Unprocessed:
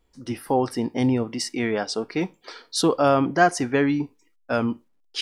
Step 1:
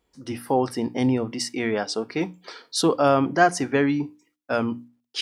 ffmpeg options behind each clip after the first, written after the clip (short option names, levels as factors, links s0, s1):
-af "highpass=63,bandreject=f=60:t=h:w=6,bandreject=f=120:t=h:w=6,bandreject=f=180:t=h:w=6,bandreject=f=240:t=h:w=6,bandreject=f=300:t=h:w=6"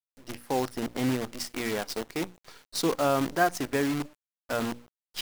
-af "acrusher=bits=5:dc=4:mix=0:aa=0.000001,volume=0.473"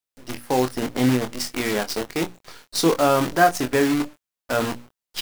-filter_complex "[0:a]asplit=2[s0][s1];[s1]adelay=24,volume=0.422[s2];[s0][s2]amix=inputs=2:normalize=0,volume=2.11"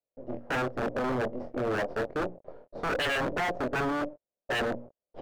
-af "aeval=exprs='(tanh(17.8*val(0)+0.4)-tanh(0.4))/17.8':c=same,lowpass=f=580:t=q:w=4.9,aeval=exprs='0.0668*(abs(mod(val(0)/0.0668+3,4)-2)-1)':c=same"